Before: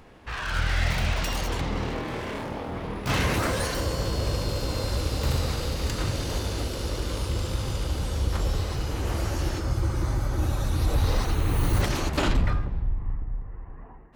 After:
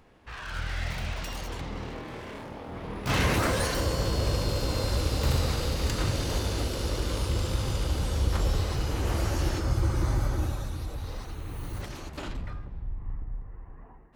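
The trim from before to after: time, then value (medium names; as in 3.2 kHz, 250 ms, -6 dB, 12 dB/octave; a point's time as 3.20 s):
2.59 s -7.5 dB
3.23 s 0 dB
10.26 s 0 dB
10.96 s -13 dB
12.49 s -13 dB
13.19 s -4.5 dB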